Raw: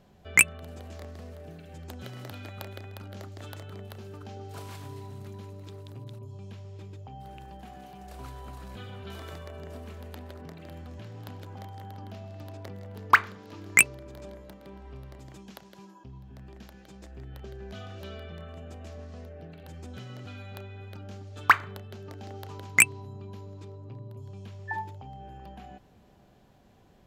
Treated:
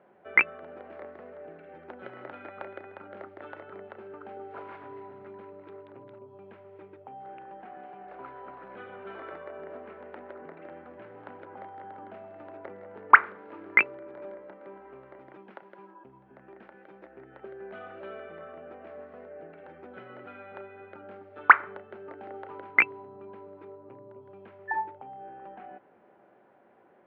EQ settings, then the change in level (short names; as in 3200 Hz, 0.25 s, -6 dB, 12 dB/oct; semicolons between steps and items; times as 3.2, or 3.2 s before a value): speaker cabinet 320–2200 Hz, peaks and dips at 360 Hz +6 dB, 550 Hz +5 dB, 870 Hz +4 dB, 1400 Hz +6 dB, 2100 Hz +3 dB; 0.0 dB